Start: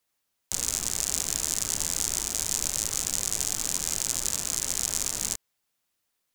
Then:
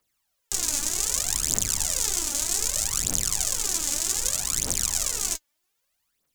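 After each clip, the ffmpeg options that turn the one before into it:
ffmpeg -i in.wav -af "aphaser=in_gain=1:out_gain=1:delay=3.6:decay=0.68:speed=0.64:type=triangular" out.wav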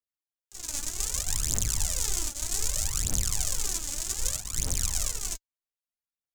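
ffmpeg -i in.wav -filter_complex "[0:a]acrossover=split=120|1400[link_01][link_02][link_03];[link_01]dynaudnorm=framelen=120:gausssize=13:maxgain=11dB[link_04];[link_04][link_02][link_03]amix=inputs=3:normalize=0,agate=range=-20dB:threshold=-24dB:ratio=16:detection=peak,volume=-4.5dB" out.wav

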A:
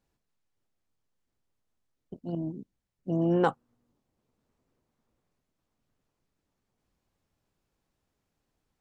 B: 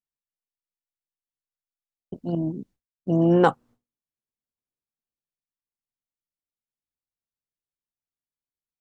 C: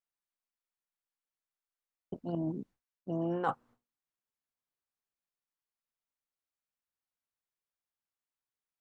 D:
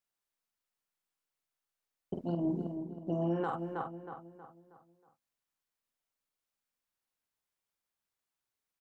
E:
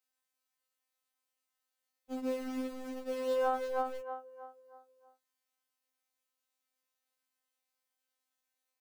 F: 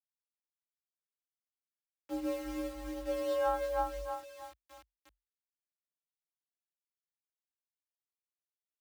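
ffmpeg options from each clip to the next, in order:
ffmpeg -i in.wav -af "agate=range=-33dB:threshold=-52dB:ratio=3:detection=peak,volume=7dB" out.wav
ffmpeg -i in.wav -af "equalizer=frequency=1200:width=0.54:gain=9,areverse,acompressor=threshold=-24dB:ratio=5,areverse,volume=-6.5dB" out.wav
ffmpeg -i in.wav -filter_complex "[0:a]asplit=2[link_01][link_02];[link_02]adelay=47,volume=-5dB[link_03];[link_01][link_03]amix=inputs=2:normalize=0,asplit=2[link_04][link_05];[link_05]adelay=318,lowpass=frequency=2600:poles=1,volume=-9.5dB,asplit=2[link_06][link_07];[link_07]adelay=318,lowpass=frequency=2600:poles=1,volume=0.43,asplit=2[link_08][link_09];[link_09]adelay=318,lowpass=frequency=2600:poles=1,volume=0.43,asplit=2[link_10][link_11];[link_11]adelay=318,lowpass=frequency=2600:poles=1,volume=0.43,asplit=2[link_12][link_13];[link_13]adelay=318,lowpass=frequency=2600:poles=1,volume=0.43[link_14];[link_06][link_08][link_10][link_12][link_14]amix=inputs=5:normalize=0[link_15];[link_04][link_15]amix=inputs=2:normalize=0,alimiter=level_in=2.5dB:limit=-24dB:level=0:latency=1:release=139,volume=-2.5dB,volume=2.5dB" out.wav
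ffmpeg -i in.wav -filter_complex "[0:a]afftfilt=real='hypot(re,im)*cos(PI*b)':imag='0':win_size=2048:overlap=0.75,acrossover=split=260[link_01][link_02];[link_01]acrusher=bits=7:mix=0:aa=0.000001[link_03];[link_03][link_02]amix=inputs=2:normalize=0,afftfilt=real='re*3.46*eq(mod(b,12),0)':imag='im*3.46*eq(mod(b,12),0)':win_size=2048:overlap=0.75,volume=3dB" out.wav
ffmpeg -i in.wav -af "acrusher=bits=8:mix=0:aa=0.000001,aphaser=in_gain=1:out_gain=1:delay=1.9:decay=0.22:speed=0.97:type=sinusoidal,afreqshift=47" out.wav

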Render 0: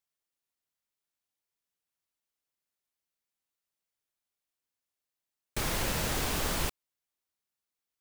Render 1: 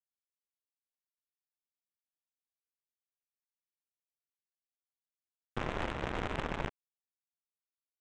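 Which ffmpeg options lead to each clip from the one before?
ffmpeg -i in.wav -af "alimiter=level_in=2.5dB:limit=-24dB:level=0:latency=1:release=17,volume=-2.5dB,aresample=8000,acrusher=bits=4:mix=0:aa=0.5,aresample=44100,adynamicsmooth=sensitivity=3.5:basefreq=960,volume=7.5dB" out.wav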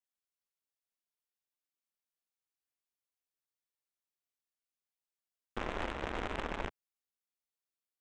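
ffmpeg -i in.wav -af "equalizer=frequency=130:width_type=o:width=0.64:gain=-11.5,volume=-1dB" out.wav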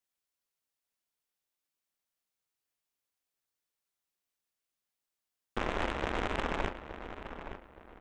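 ffmpeg -i in.wav -filter_complex "[0:a]asplit=2[link_01][link_02];[link_02]adelay=870,lowpass=frequency=2700:poles=1,volume=-10dB,asplit=2[link_03][link_04];[link_04]adelay=870,lowpass=frequency=2700:poles=1,volume=0.34,asplit=2[link_05][link_06];[link_06]adelay=870,lowpass=frequency=2700:poles=1,volume=0.34,asplit=2[link_07][link_08];[link_08]adelay=870,lowpass=frequency=2700:poles=1,volume=0.34[link_09];[link_01][link_03][link_05][link_07][link_09]amix=inputs=5:normalize=0,volume=4.5dB" out.wav

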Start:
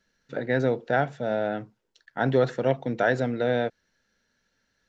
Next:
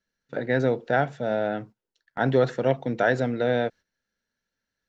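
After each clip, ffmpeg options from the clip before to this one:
ffmpeg -i in.wav -af "agate=range=-12dB:threshold=-44dB:ratio=16:detection=peak,volume=1dB" out.wav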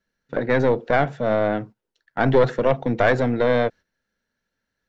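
ffmpeg -i in.wav -af "aeval=exprs='(tanh(6.31*val(0)+0.55)-tanh(0.55))/6.31':channel_layout=same,highshelf=frequency=3500:gain=-7.5,volume=8.5dB" out.wav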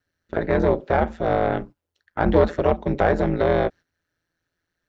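ffmpeg -i in.wav -filter_complex "[0:a]acrossover=split=1300[link_01][link_02];[link_02]alimiter=limit=-24dB:level=0:latency=1:release=222[link_03];[link_01][link_03]amix=inputs=2:normalize=0,aeval=exprs='val(0)*sin(2*PI*84*n/s)':channel_layout=same,volume=2.5dB" out.wav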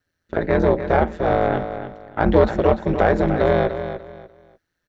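ffmpeg -i in.wav -af "aecho=1:1:295|590|885:0.316|0.0822|0.0214,volume=2dB" out.wav

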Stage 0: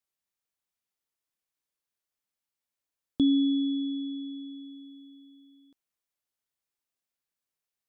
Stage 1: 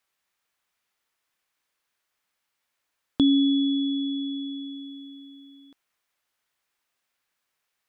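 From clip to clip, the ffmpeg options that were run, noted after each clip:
ffmpeg -i in.wav -filter_complex "[0:a]equalizer=frequency=1600:width_type=o:width=2.8:gain=9.5,asplit=2[link_01][link_02];[link_02]acompressor=threshold=-33dB:ratio=6,volume=0dB[link_03];[link_01][link_03]amix=inputs=2:normalize=0" out.wav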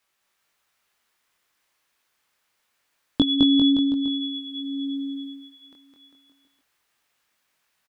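ffmpeg -i in.wav -af "flanger=delay=19:depth=4.3:speed=0.26,aecho=1:1:210|399|569.1|722.2|860:0.631|0.398|0.251|0.158|0.1,volume=8dB" out.wav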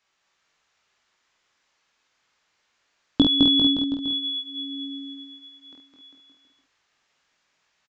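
ffmpeg -i in.wav -filter_complex "[0:a]aresample=16000,aresample=44100,asplit=2[link_01][link_02];[link_02]adelay=49,volume=-3.5dB[link_03];[link_01][link_03]amix=inputs=2:normalize=0,volume=1.5dB" out.wav

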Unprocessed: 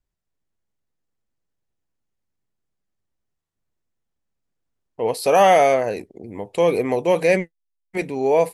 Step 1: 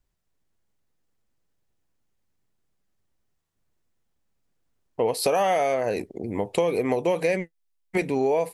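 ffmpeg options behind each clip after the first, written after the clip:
ffmpeg -i in.wav -af "acompressor=threshold=-25dB:ratio=8,volume=5dB" out.wav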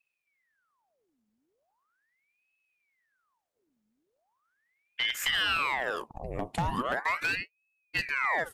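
ffmpeg -i in.wav -af "aeval=exprs='0.178*(abs(mod(val(0)/0.178+3,4)-2)-1)':channel_layout=same,aeval=exprs='val(0)*sin(2*PI*1400*n/s+1400*0.85/0.39*sin(2*PI*0.39*n/s))':channel_layout=same,volume=-3.5dB" out.wav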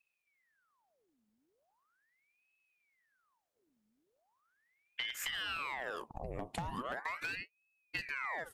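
ffmpeg -i in.wav -af "acompressor=threshold=-35dB:ratio=6,volume=-1.5dB" out.wav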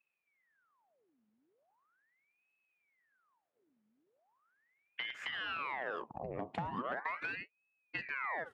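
ffmpeg -i in.wav -af "highpass=130,lowpass=2300,volume=2dB" out.wav

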